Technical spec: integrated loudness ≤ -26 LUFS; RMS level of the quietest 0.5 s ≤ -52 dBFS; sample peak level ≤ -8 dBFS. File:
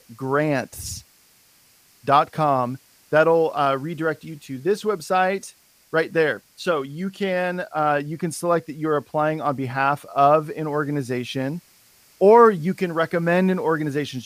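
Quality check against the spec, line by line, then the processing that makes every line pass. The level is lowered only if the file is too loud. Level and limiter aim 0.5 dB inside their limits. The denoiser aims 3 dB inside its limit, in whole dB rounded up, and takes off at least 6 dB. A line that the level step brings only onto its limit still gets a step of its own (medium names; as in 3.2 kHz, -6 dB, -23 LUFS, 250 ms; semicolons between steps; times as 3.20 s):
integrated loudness -21.5 LUFS: fail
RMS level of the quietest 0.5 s -56 dBFS: pass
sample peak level -3.0 dBFS: fail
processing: trim -5 dB; peak limiter -8.5 dBFS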